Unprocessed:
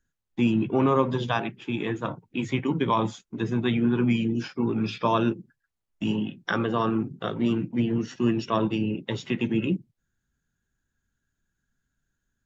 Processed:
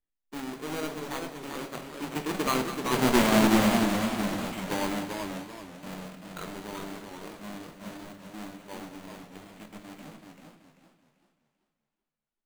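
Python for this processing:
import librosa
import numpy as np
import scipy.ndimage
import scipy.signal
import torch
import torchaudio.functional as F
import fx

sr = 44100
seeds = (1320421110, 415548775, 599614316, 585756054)

p1 = fx.halfwave_hold(x, sr)
p2 = fx.doppler_pass(p1, sr, speed_mps=51, closest_m=13.0, pass_at_s=3.14)
p3 = fx.peak_eq(p2, sr, hz=110.0, db=-14.5, octaves=0.93)
p4 = fx.rider(p3, sr, range_db=4, speed_s=2.0)
p5 = p3 + (p4 * 10.0 ** (2.0 / 20.0))
p6 = fx.sample_hold(p5, sr, seeds[0], rate_hz=5300.0, jitter_pct=0)
p7 = p6 + fx.echo_thinned(p6, sr, ms=205, feedback_pct=60, hz=250.0, wet_db=-13.5, dry=0)
p8 = fx.room_shoebox(p7, sr, seeds[1], volume_m3=210.0, walls='mixed', distance_m=0.4)
p9 = fx.echo_warbled(p8, sr, ms=386, feedback_pct=33, rate_hz=2.8, cents=131, wet_db=-5)
y = p9 * 10.0 ** (-5.5 / 20.0)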